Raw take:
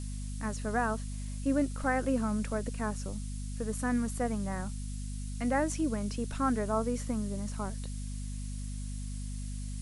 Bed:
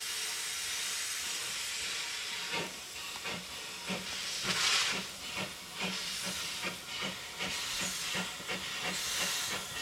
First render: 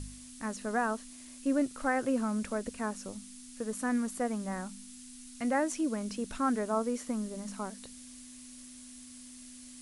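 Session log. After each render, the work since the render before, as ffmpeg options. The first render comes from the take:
-af "bandreject=f=50:t=h:w=4,bandreject=f=100:t=h:w=4,bandreject=f=150:t=h:w=4,bandreject=f=200:t=h:w=4"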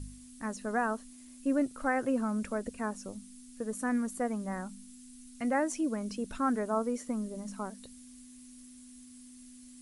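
-af "afftdn=nr=8:nf=-50"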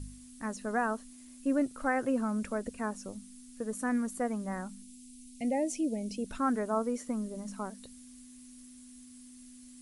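-filter_complex "[0:a]asettb=1/sr,asplit=3[a][b][c];[a]atrim=end=4.824[d];[b]atrim=start=4.82:end=6.26,asetpts=PTS-STARTPTS,afade=t=in:d=0.004:c=qsin,afade=t=out:st=1.436:d=0.004:c=qsin,asuperstop=centerf=1300:order=8:qfactor=0.97[e];[c]atrim=start=6.256[f];[d][e]acrossfade=d=0.004:c1=hsin:c2=qsin[g];[g][f]acrossfade=d=0.004:c1=qsin:c2=hsin"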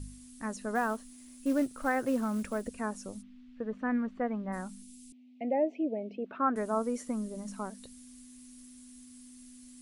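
-filter_complex "[0:a]asettb=1/sr,asplit=3[a][b][c];[a]atrim=end=0.754[d];[b]atrim=start=0.75:end=2.68,asetpts=PTS-STARTPTS,afade=t=in:d=0.004:c=qsin,afade=t=out:st=1.926:d=0.004:c=qsin,acrusher=bits=6:mode=log:mix=0:aa=0.000001[e];[c]atrim=start=2.676[f];[d][e]acrossfade=d=0.004:c1=hsin:c2=qsin[g];[g][f]acrossfade=d=0.004:c1=qsin:c2=hsin,asplit=3[h][i][j];[h]afade=t=out:st=3.21:d=0.02[k];[i]lowpass=f=3.1k:w=0.5412,lowpass=f=3.1k:w=1.3066,afade=t=in:st=3.21:d=0.02,afade=t=out:st=4.52:d=0.02[l];[j]afade=t=in:st=4.52:d=0.02[m];[k][l][m]amix=inputs=3:normalize=0,asettb=1/sr,asplit=3[n][o][p];[n]atrim=end=5.124[q];[o]atrim=start=5.12:end=6.56,asetpts=PTS-STARTPTS,afade=t=in:d=0.004:c=qsin,afade=t=out:st=1.436:d=0.004:c=qsin,highpass=270,equalizer=f=390:t=q:w=4:g=5,equalizer=f=640:t=q:w=4:g=6,equalizer=f=1.2k:t=q:w=4:g=6,equalizer=f=2k:t=q:w=4:g=-3,lowpass=f=2.5k:w=0.5412,lowpass=f=2.5k:w=1.3066[r];[p]atrim=start=6.556[s];[q][r]acrossfade=d=0.004:c1=hsin:c2=qsin[t];[t][s]acrossfade=d=0.004:c1=qsin:c2=hsin"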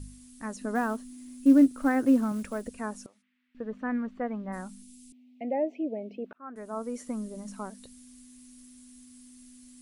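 -filter_complex "[0:a]asettb=1/sr,asplit=3[a][b][c];[a]atrim=end=0.614[d];[b]atrim=start=0.61:end=2.32,asetpts=PTS-STARTPTS,afade=t=in:d=0.004:c=qsin,afade=t=out:st=1.706:d=0.004:c=qsin,equalizer=f=280:w=3:g=12[e];[c]atrim=start=2.316[f];[d][e]acrossfade=d=0.004:c1=hsin:c2=qsin[g];[g][f]acrossfade=d=0.004:c1=qsin:c2=hsin,asettb=1/sr,asplit=3[h][i][j];[h]atrim=end=3.064[k];[i]atrim=start=3.06:end=3.55,asetpts=PTS-STARTPTS,afade=t=in:d=0.004:c=qsin,afade=t=out:st=0.486:d=0.004:c=qsin,bandpass=f=1.9k:t=q:w=2.2[l];[j]atrim=start=3.546[m];[k][l]acrossfade=d=0.004:c1=hsin:c2=qsin[n];[n][m]acrossfade=d=0.004:c1=qsin:c2=hsin,asplit=2[o][p];[o]atrim=end=6.33,asetpts=PTS-STARTPTS,afade=t=out:st=6.326:d=0.004:c=hsin[q];[p]atrim=start=6.33,asetpts=PTS-STARTPTS,afade=t=in:d=0.75[r];[q][r]concat=n=2:v=0:a=1"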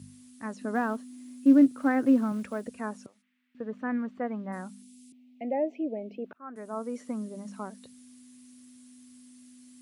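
-filter_complex "[0:a]acrossover=split=4800[a][b];[b]acompressor=threshold=-57dB:ratio=4:attack=1:release=60[c];[a][c]amix=inputs=2:normalize=0,highpass=f=96:w=0.5412,highpass=f=96:w=1.3066"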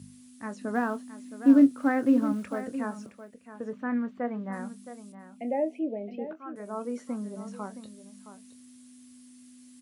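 -filter_complex "[0:a]asplit=2[a][b];[b]adelay=25,volume=-12dB[c];[a][c]amix=inputs=2:normalize=0,aecho=1:1:667:0.237"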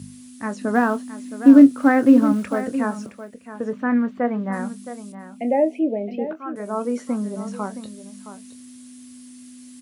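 -af "volume=9.5dB,alimiter=limit=-2dB:level=0:latency=1"

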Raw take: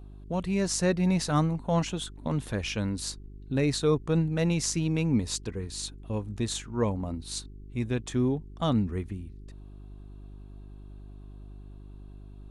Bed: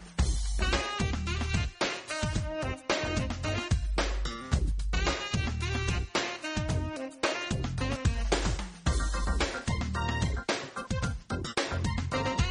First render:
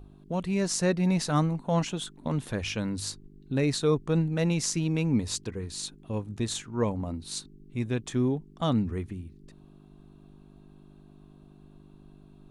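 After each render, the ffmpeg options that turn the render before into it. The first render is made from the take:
-af "bandreject=f=50:t=h:w=4,bandreject=f=100:t=h:w=4"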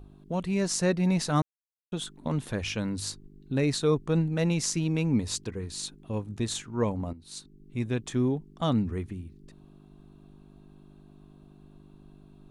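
-filter_complex "[0:a]asplit=4[a][b][c][d];[a]atrim=end=1.42,asetpts=PTS-STARTPTS,afade=t=out:st=1.416:d=0.004:c=hsin[e];[b]atrim=start=1.42:end=1.92,asetpts=PTS-STARTPTS,volume=0[f];[c]atrim=start=1.92:end=7.13,asetpts=PTS-STARTPTS,afade=t=in:d=0.004:c=hsin,afade=t=out:st=5.206:d=0.004:c=hsin:silence=0.199526[g];[d]atrim=start=7.13,asetpts=PTS-STARTPTS,afade=t=in:d=0.63:silence=0.199526[h];[e][f][g][h]concat=n=4:v=0:a=1"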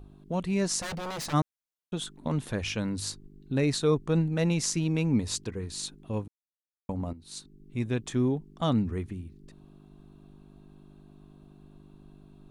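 -filter_complex "[0:a]asplit=3[a][b][c];[a]afade=t=out:st=0.8:d=0.02[d];[b]aeval=exprs='0.0299*(abs(mod(val(0)/0.0299+3,4)-2)-1)':c=same,afade=t=in:st=0.8:d=0.02,afade=t=out:st=1.32:d=0.02[e];[c]afade=t=in:st=1.32:d=0.02[f];[d][e][f]amix=inputs=3:normalize=0,asplit=3[g][h][i];[g]atrim=end=6.28,asetpts=PTS-STARTPTS,afade=t=out:st=6.276:d=0.004:c=hsin[j];[h]atrim=start=6.28:end=6.89,asetpts=PTS-STARTPTS,volume=0[k];[i]atrim=start=6.89,asetpts=PTS-STARTPTS,afade=t=in:d=0.004:c=hsin[l];[j][k][l]concat=n=3:v=0:a=1"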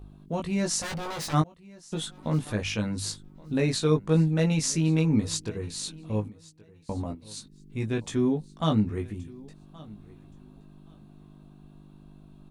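-filter_complex "[0:a]asplit=2[a][b];[b]adelay=19,volume=-3.5dB[c];[a][c]amix=inputs=2:normalize=0,aecho=1:1:1123|2246:0.0794|0.0159"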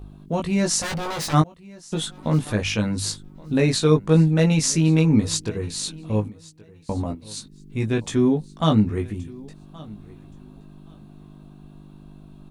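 -af "volume=6dB"

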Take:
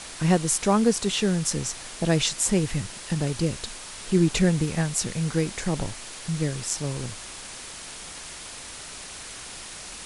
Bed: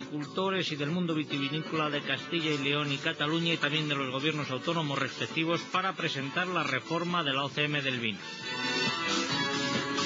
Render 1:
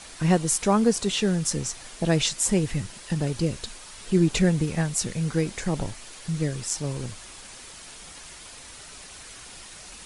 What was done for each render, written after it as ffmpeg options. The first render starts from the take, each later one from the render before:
-af "afftdn=nr=6:nf=-40"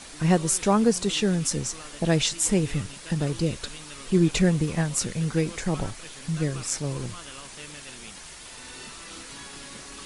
-filter_complex "[1:a]volume=-15dB[a];[0:a][a]amix=inputs=2:normalize=0"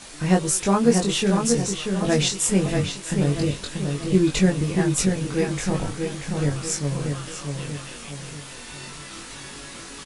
-filter_complex "[0:a]asplit=2[a][b];[b]adelay=21,volume=-2.5dB[c];[a][c]amix=inputs=2:normalize=0,asplit=2[d][e];[e]adelay=636,lowpass=f=3.2k:p=1,volume=-4.5dB,asplit=2[f][g];[g]adelay=636,lowpass=f=3.2k:p=1,volume=0.44,asplit=2[h][i];[i]adelay=636,lowpass=f=3.2k:p=1,volume=0.44,asplit=2[j][k];[k]adelay=636,lowpass=f=3.2k:p=1,volume=0.44,asplit=2[l][m];[m]adelay=636,lowpass=f=3.2k:p=1,volume=0.44[n];[d][f][h][j][l][n]amix=inputs=6:normalize=0"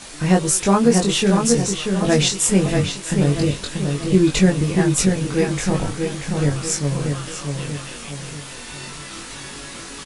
-af "volume=4dB,alimiter=limit=-3dB:level=0:latency=1"

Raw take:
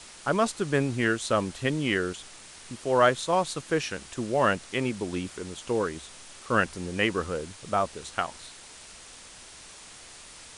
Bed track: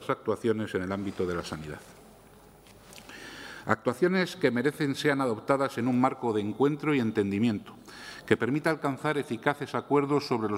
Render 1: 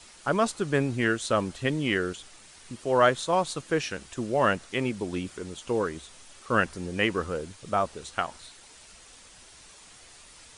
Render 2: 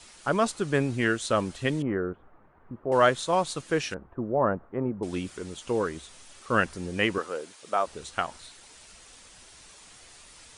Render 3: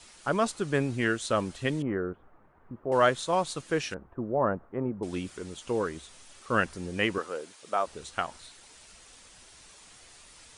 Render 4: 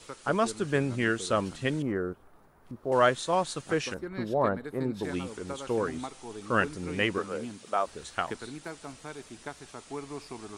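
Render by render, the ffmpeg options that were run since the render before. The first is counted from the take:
-af "afftdn=nr=6:nf=-48"
-filter_complex "[0:a]asettb=1/sr,asplit=3[a][b][c];[a]atrim=end=1.824[d];[b]atrim=start=1.82:end=2.92,asetpts=PTS-STARTPTS,afade=t=in:d=0.004:c=qsin,afade=t=out:st=1.096:d=0.004:c=qsin,lowpass=f=1.3k:w=0.5412,lowpass=f=1.3k:w=1.3066[e];[c]atrim=start=2.916[f];[d][e]acrossfade=d=0.004:c1=hsin:c2=qsin[g];[g][f]acrossfade=d=0.004:c1=qsin:c2=hsin,asettb=1/sr,asplit=3[h][i][j];[h]atrim=end=3.944[k];[i]atrim=start=3.94:end=5.03,asetpts=PTS-STARTPTS,afade=t=in:d=0.004:c=qsin,afade=t=out:st=1.086:d=0.004:c=qsin,lowpass=f=1.2k:w=0.5412,lowpass=f=1.2k:w=1.3066[l];[j]atrim=start=5.026[m];[k][l]acrossfade=d=0.004:c1=hsin:c2=qsin[n];[n][m]acrossfade=d=0.004:c1=qsin:c2=hsin,asettb=1/sr,asplit=3[o][p][q];[o]atrim=end=7.184[r];[p]atrim=start=7.18:end=7.87,asetpts=PTS-STARTPTS,afade=t=in:d=0.004:c=qsin,afade=t=out:st=0.686:d=0.004:c=qsin,highpass=380[s];[q]atrim=start=7.866[t];[r][s]acrossfade=d=0.004:c1=hsin:c2=qsin[u];[u][t]acrossfade=d=0.004:c1=qsin:c2=hsin"
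-af "volume=-2dB"
-filter_complex "[1:a]volume=-14dB[a];[0:a][a]amix=inputs=2:normalize=0"

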